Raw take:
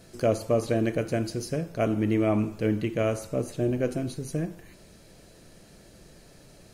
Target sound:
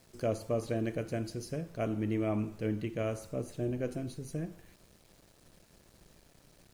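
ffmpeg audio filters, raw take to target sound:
-af "aeval=exprs='val(0)*gte(abs(val(0)),0.00316)':c=same,lowshelf=f=130:g=3.5,volume=0.376"

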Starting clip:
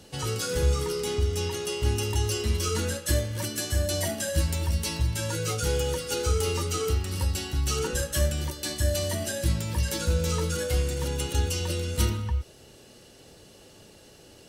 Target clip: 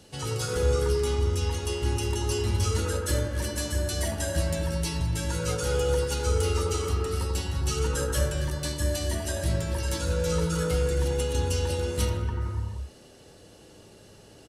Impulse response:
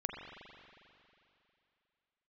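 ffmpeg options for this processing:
-filter_complex "[1:a]atrim=start_sample=2205,afade=t=out:st=0.3:d=0.01,atrim=end_sample=13671,asetrate=22491,aresample=44100[s0];[0:a][s0]afir=irnorm=-1:irlink=0,aresample=32000,aresample=44100,volume=0.596"

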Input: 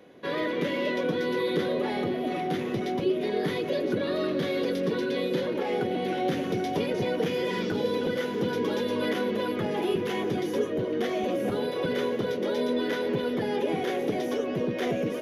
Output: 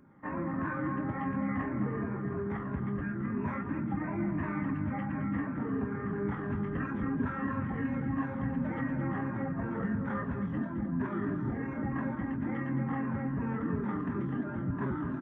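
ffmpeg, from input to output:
-filter_complex "[0:a]afftfilt=real='re*pow(10,8/40*sin(2*PI*(1.5*log(max(b,1)*sr/1024/100)/log(2)-(-2.9)*(pts-256)/sr)))':imag='im*pow(10,8/40*sin(2*PI*(1.5*log(max(b,1)*sr/1024/100)/log(2)-(-2.9)*(pts-256)/sr)))':win_size=1024:overlap=0.75,acrossover=split=660[s0][s1];[s0]aeval=exprs='val(0)*(1-0.5/2+0.5/2*cos(2*PI*2.1*n/s))':c=same[s2];[s1]aeval=exprs='val(0)*(1-0.5/2-0.5/2*cos(2*PI*2.1*n/s))':c=same[s3];[s2][s3]amix=inputs=2:normalize=0,lowpass=f=2900:t=q:w=1.7,asetrate=24046,aresample=44100,atempo=1.83401,asplit=2[s4][s5];[s5]adelay=215.7,volume=0.355,highshelf=f=4000:g=-4.85[s6];[s4][s6]amix=inputs=2:normalize=0,volume=0.631"

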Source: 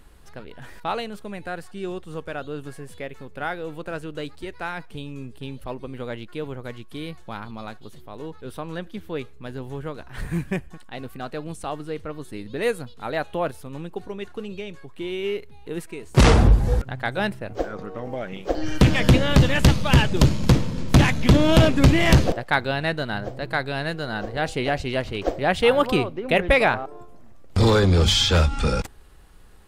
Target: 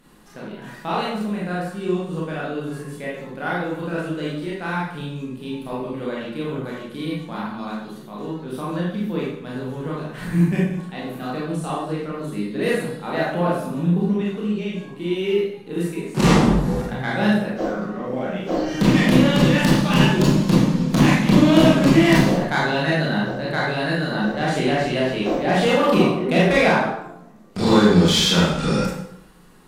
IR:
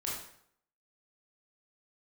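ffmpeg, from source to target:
-filter_complex "[0:a]asettb=1/sr,asplit=3[s0][s1][s2];[s0]atrim=end=13.634[s3];[s1]atrim=start=13.63:end=14.15,asetpts=PTS-STARTPTS,afade=t=in:d=0.004:c=qsin,afade=t=out:st=0.516:d=0.004:c=qsin,equalizer=f=200:w=3:g=14.5[s4];[s2]atrim=start=14.146[s5];[s3][s4]acrossfade=d=0.004:c1=hsin:c2=qsin[s6];[s6][s5]acrossfade=d=0.004:c1=qsin:c2=hsin,asoftclip=type=tanh:threshold=0.2,lowshelf=f=120:t=q:w=3:g=-13[s7];[1:a]atrim=start_sample=2205,asetrate=39249,aresample=44100[s8];[s7][s8]afir=irnorm=-1:irlink=0,volume=1.12"

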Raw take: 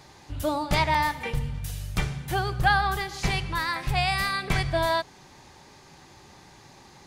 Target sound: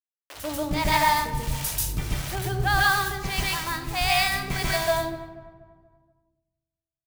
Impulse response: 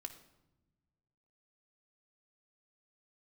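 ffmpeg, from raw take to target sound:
-filter_complex "[0:a]asettb=1/sr,asplit=3[s0][s1][s2];[s0]atrim=end=1.234[s3];[s1]atrim=start=1.23:end=1.79,asetpts=PTS-STARTPTS,afade=t=in:d=0.004:c=qsin,afade=t=out:st=0.556:d=0.004:c=qsin,highshelf=f=3000:g=12[s4];[s2]atrim=start=1.786[s5];[s3][s4]acrossfade=d=0.004:c1=hsin:c2=qsin[s6];[s6][s5]acrossfade=d=0.004:c1=qsin:c2=hsin,acrusher=bits=5:mix=0:aa=0.000001,acrossover=split=470[s7][s8];[s7]aeval=exprs='val(0)*(1-1/2+1/2*cos(2*PI*1.6*n/s))':c=same[s9];[s8]aeval=exprs='val(0)*(1-1/2-1/2*cos(2*PI*1.6*n/s))':c=same[s10];[s9][s10]amix=inputs=2:normalize=0,asplit=2[s11][s12];[s12]adelay=241,lowpass=f=1500:p=1,volume=0.2,asplit=2[s13][s14];[s14]adelay=241,lowpass=f=1500:p=1,volume=0.48,asplit=2[s15][s16];[s16]adelay=241,lowpass=f=1500:p=1,volume=0.48,asplit=2[s17][s18];[s18]adelay=241,lowpass=f=1500:p=1,volume=0.48,asplit=2[s19][s20];[s20]adelay=241,lowpass=f=1500:p=1,volume=0.48[s21];[s11][s13][s15][s17][s19][s21]amix=inputs=6:normalize=0,asplit=2[s22][s23];[1:a]atrim=start_sample=2205,adelay=139[s24];[s23][s24]afir=irnorm=-1:irlink=0,volume=2.24[s25];[s22][s25]amix=inputs=2:normalize=0,adynamicequalizer=threshold=0.0112:dfrequency=4000:dqfactor=0.7:tfrequency=4000:tqfactor=0.7:attack=5:release=100:ratio=0.375:range=2:mode=boostabove:tftype=highshelf"

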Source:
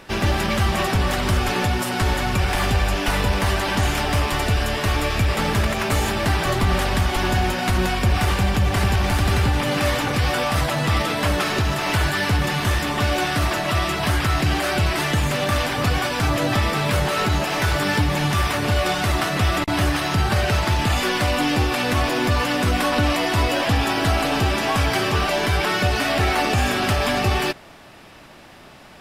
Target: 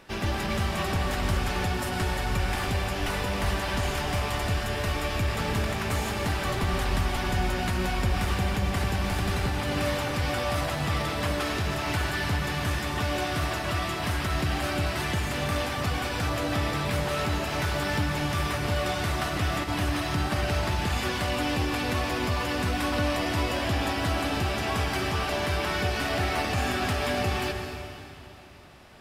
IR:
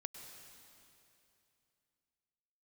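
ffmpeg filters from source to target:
-filter_complex "[1:a]atrim=start_sample=2205[s0];[0:a][s0]afir=irnorm=-1:irlink=0,volume=0.631"

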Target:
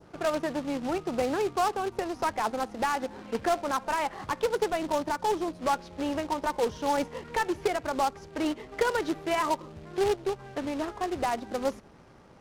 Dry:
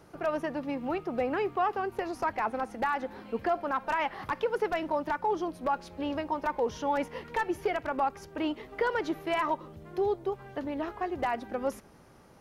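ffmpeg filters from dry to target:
-af "acrusher=bits=2:mode=log:mix=0:aa=0.000001,adynamicsmooth=sensitivity=6:basefreq=5800,adynamicequalizer=threshold=0.00501:dfrequency=2100:dqfactor=0.86:tfrequency=2100:tqfactor=0.86:attack=5:release=100:ratio=0.375:range=2.5:mode=cutabove:tftype=bell,volume=1.26"

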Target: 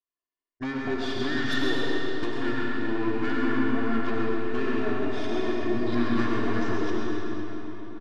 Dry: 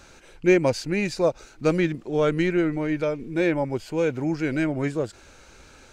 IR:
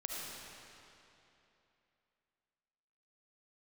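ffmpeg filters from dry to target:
-filter_complex "[0:a]aemphasis=mode=production:type=bsi,bandreject=f=83.92:t=h:w=4,bandreject=f=167.84:t=h:w=4,bandreject=f=251.76:t=h:w=4,bandreject=f=335.68:t=h:w=4,bandreject=f=419.6:t=h:w=4,bandreject=f=503.52:t=h:w=4,bandreject=f=587.44:t=h:w=4,bandreject=f=671.36:t=h:w=4,bandreject=f=755.28:t=h:w=4,bandreject=f=839.2:t=h:w=4,bandreject=f=923.12:t=h:w=4,bandreject=f=1007.04:t=h:w=4,bandreject=f=1090.96:t=h:w=4,bandreject=f=1174.88:t=h:w=4,bandreject=f=1258.8:t=h:w=4,bandreject=f=1342.72:t=h:w=4,bandreject=f=1426.64:t=h:w=4,bandreject=f=1510.56:t=h:w=4,bandreject=f=1594.48:t=h:w=4,bandreject=f=1678.4:t=h:w=4,bandreject=f=1762.32:t=h:w=4,bandreject=f=1846.24:t=h:w=4,bandreject=f=1930.16:t=h:w=4,bandreject=f=2014.08:t=h:w=4,bandreject=f=2098:t=h:w=4,bandreject=f=2181.92:t=h:w=4,bandreject=f=2265.84:t=h:w=4,bandreject=f=2349.76:t=h:w=4,bandreject=f=2433.68:t=h:w=4,bandreject=f=2517.6:t=h:w=4,bandreject=f=2601.52:t=h:w=4,bandreject=f=2685.44:t=h:w=4,bandreject=f=2769.36:t=h:w=4,bandreject=f=2853.28:t=h:w=4,bandreject=f=2937.2:t=h:w=4,bandreject=f=3021.12:t=h:w=4,bandreject=f=3105.04:t=h:w=4,bandreject=f=3188.96:t=h:w=4,bandreject=f=3272.88:t=h:w=4,agate=range=0.00178:threshold=0.0158:ratio=16:detection=peak,lowpass=3900,aecho=1:1:2.1:0.84,acompressor=threshold=0.0447:ratio=12,aeval=exprs='0.141*(cos(1*acos(clip(val(0)/0.141,-1,1)))-cos(1*PI/2))+0.0178*(cos(4*acos(clip(val(0)/0.141,-1,1)))-cos(4*PI/2))+0.0501*(cos(5*acos(clip(val(0)/0.141,-1,1)))-cos(5*PI/2))':c=same,aecho=1:1:99|198|297|396|495|594|693:0.355|0.213|0.128|0.0766|0.046|0.0276|0.0166[s0];[1:a]atrim=start_sample=2205[s1];[s0][s1]afir=irnorm=-1:irlink=0,asetrate=32667,aresample=44100,volume=0.631"

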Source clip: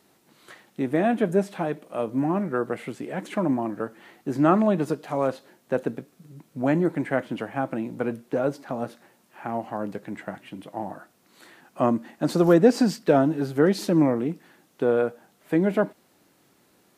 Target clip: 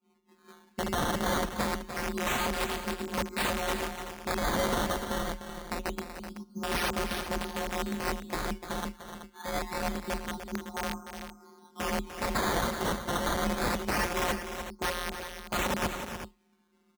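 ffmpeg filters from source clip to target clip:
-filter_complex "[0:a]agate=range=0.0224:threshold=0.00178:ratio=3:detection=peak,lowpass=f=1100:w=0.5412,lowpass=f=1100:w=1.3066,aecho=1:1:0.9:0.94,alimiter=limit=0.168:level=0:latency=1:release=53,flanger=delay=16:depth=5.9:speed=0.12,afftfilt=real='hypot(re,im)*cos(PI*b)':imag='0':win_size=1024:overlap=0.75,aresample=16000,aeval=exprs='(mod(29.9*val(0)+1,2)-1)/29.9':c=same,aresample=44100,afreqshift=34,acrusher=samples=12:mix=1:aa=0.000001:lfo=1:lforange=12:lforate=0.25,asplit=2[s0][s1];[s1]aecho=0:1:298|379:0.316|0.282[s2];[s0][s2]amix=inputs=2:normalize=0,volume=1.78"

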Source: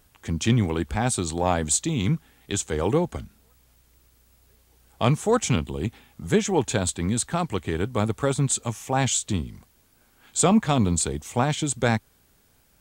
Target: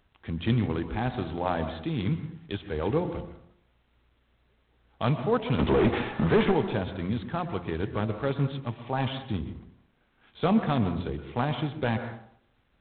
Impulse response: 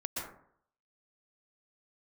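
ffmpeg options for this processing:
-filter_complex "[0:a]asplit=3[s0][s1][s2];[s0]afade=t=out:st=5.58:d=0.02[s3];[s1]asplit=2[s4][s5];[s5]highpass=f=720:p=1,volume=100,asoftclip=type=tanh:threshold=0.398[s6];[s4][s6]amix=inputs=2:normalize=0,lowpass=f=1000:p=1,volume=0.501,afade=t=in:st=5.58:d=0.02,afade=t=out:st=6.51:d=0.02[s7];[s2]afade=t=in:st=6.51:d=0.02[s8];[s3][s7][s8]amix=inputs=3:normalize=0,bandreject=f=87.82:t=h:w=4,bandreject=f=175.64:t=h:w=4,bandreject=f=263.46:t=h:w=4,bandreject=f=351.28:t=h:w=4,bandreject=f=439.1:t=h:w=4,bandreject=f=526.92:t=h:w=4,bandreject=f=614.74:t=h:w=4,bandreject=f=702.56:t=h:w=4,bandreject=f=790.38:t=h:w=4,bandreject=f=878.2:t=h:w=4,bandreject=f=966.02:t=h:w=4,asplit=2[s9][s10];[1:a]atrim=start_sample=2205,lowpass=2800[s11];[s10][s11]afir=irnorm=-1:irlink=0,volume=0.316[s12];[s9][s12]amix=inputs=2:normalize=0,volume=0.501" -ar 8000 -c:a adpcm_g726 -b:a 24k

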